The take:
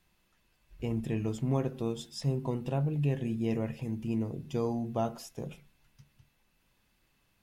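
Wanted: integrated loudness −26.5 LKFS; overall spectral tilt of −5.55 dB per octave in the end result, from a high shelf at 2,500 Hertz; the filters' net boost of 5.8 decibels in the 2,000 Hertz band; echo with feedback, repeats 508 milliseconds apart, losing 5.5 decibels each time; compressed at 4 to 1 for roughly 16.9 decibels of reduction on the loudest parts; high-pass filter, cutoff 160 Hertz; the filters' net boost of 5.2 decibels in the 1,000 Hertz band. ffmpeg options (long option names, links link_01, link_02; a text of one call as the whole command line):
ffmpeg -i in.wav -af "highpass=160,equalizer=frequency=1000:width_type=o:gain=6,equalizer=frequency=2000:width_type=o:gain=4.5,highshelf=frequency=2500:gain=3,acompressor=threshold=-44dB:ratio=4,aecho=1:1:508|1016|1524|2032|2540|3048|3556:0.531|0.281|0.149|0.079|0.0419|0.0222|0.0118,volume=19dB" out.wav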